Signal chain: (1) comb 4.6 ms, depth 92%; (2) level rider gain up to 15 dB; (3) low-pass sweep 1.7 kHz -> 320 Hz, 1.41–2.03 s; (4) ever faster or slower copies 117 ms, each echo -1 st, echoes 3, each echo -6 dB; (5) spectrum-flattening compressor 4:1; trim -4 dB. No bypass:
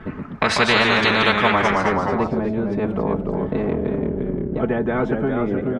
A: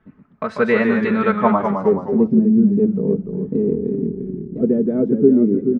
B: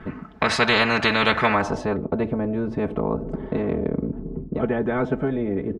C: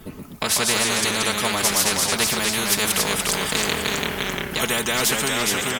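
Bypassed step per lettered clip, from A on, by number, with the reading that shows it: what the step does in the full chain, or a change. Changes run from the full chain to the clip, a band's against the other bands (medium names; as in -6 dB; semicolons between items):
5, 2 kHz band -9.0 dB; 4, momentary loudness spread change +2 LU; 3, 4 kHz band +11.0 dB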